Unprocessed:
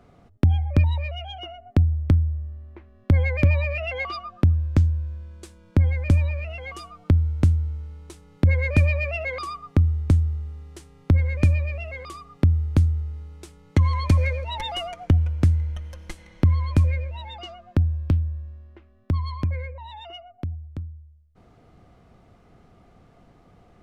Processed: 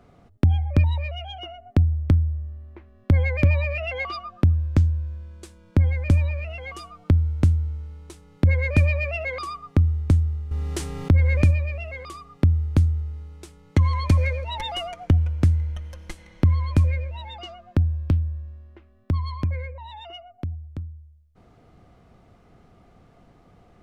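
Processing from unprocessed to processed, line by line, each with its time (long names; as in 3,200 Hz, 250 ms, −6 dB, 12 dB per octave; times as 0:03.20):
0:10.51–0:11.51: envelope flattener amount 50%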